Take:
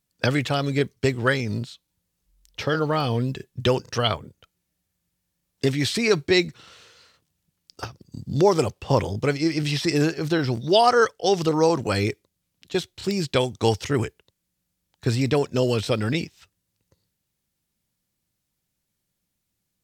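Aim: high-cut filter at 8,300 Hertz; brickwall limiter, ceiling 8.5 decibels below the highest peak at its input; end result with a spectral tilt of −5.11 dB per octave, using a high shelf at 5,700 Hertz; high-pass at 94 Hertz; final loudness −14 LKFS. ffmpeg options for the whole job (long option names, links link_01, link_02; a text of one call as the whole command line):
ffmpeg -i in.wav -af "highpass=94,lowpass=8300,highshelf=frequency=5700:gain=-7.5,volume=12dB,alimiter=limit=-1.5dB:level=0:latency=1" out.wav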